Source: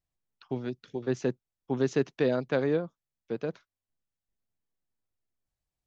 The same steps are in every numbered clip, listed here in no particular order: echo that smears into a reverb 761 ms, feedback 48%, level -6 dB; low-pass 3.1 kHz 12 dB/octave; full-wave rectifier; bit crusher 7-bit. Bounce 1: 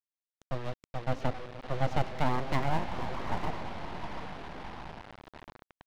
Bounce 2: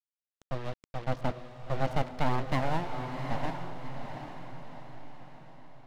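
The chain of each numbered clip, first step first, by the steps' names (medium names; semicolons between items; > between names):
echo that smears into a reverb > bit crusher > low-pass > full-wave rectifier; bit crusher > low-pass > full-wave rectifier > echo that smears into a reverb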